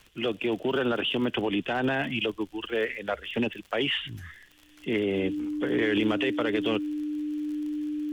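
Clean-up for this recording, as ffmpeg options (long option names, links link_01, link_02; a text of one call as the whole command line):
ffmpeg -i in.wav -af "adeclick=threshold=4,bandreject=frequency=300:width=30" out.wav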